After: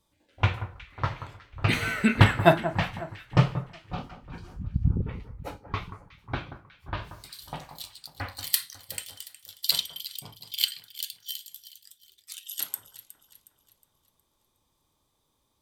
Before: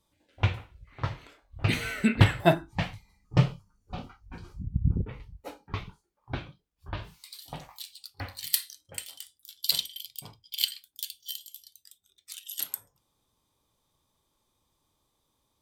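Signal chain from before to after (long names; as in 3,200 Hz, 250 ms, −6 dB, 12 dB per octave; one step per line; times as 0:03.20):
dynamic equaliser 1,200 Hz, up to +6 dB, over −48 dBFS, Q 0.95
delay that swaps between a low-pass and a high-pass 182 ms, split 1,600 Hz, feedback 64%, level −12 dB
level +1 dB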